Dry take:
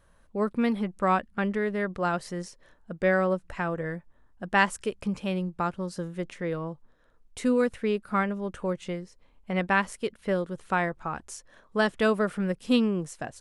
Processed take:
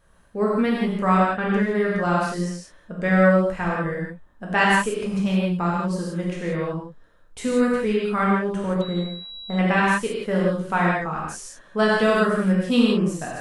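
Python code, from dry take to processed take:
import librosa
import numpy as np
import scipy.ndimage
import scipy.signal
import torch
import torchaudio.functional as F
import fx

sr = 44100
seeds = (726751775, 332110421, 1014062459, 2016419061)

y = fx.rev_gated(x, sr, seeds[0], gate_ms=200, shape='flat', drr_db=-5.0)
y = fx.pwm(y, sr, carrier_hz=3900.0, at=(8.81, 9.59))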